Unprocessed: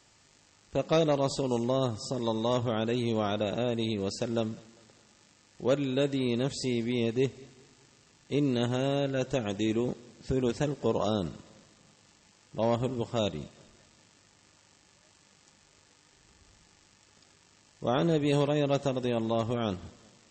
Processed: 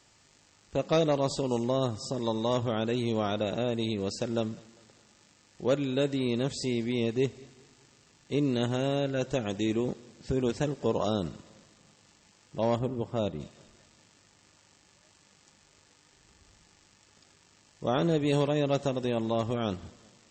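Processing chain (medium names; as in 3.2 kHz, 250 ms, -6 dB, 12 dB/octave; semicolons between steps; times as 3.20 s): 12.79–13.40 s: treble shelf 2.2 kHz -11 dB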